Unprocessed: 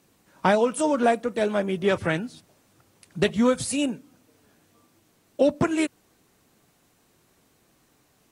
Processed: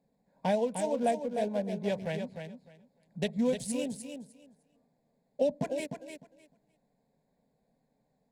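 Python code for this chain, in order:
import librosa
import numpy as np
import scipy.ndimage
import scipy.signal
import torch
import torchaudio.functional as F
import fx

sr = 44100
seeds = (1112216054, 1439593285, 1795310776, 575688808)

y = fx.wiener(x, sr, points=15)
y = fx.fixed_phaser(y, sr, hz=340.0, stages=6)
y = fx.echo_feedback(y, sr, ms=303, feedback_pct=17, wet_db=-7.5)
y = y * librosa.db_to_amplitude(-6.5)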